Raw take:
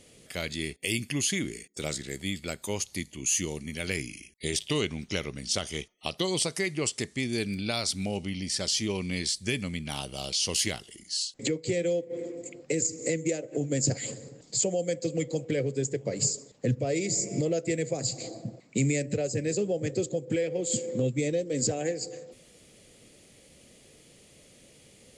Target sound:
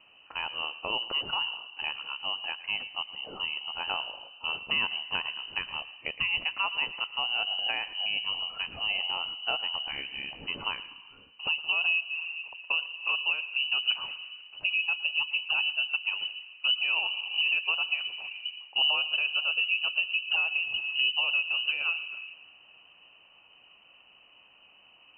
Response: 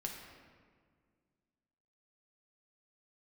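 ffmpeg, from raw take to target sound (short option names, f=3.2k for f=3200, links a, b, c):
-filter_complex "[0:a]asplit=2[a][b];[1:a]atrim=start_sample=2205,highshelf=f=2.3k:g=-11.5,adelay=113[c];[b][c]afir=irnorm=-1:irlink=0,volume=-10.5dB[d];[a][d]amix=inputs=2:normalize=0,lowpass=f=2.6k:t=q:w=0.5098,lowpass=f=2.6k:t=q:w=0.6013,lowpass=f=2.6k:t=q:w=0.9,lowpass=f=2.6k:t=q:w=2.563,afreqshift=-3100"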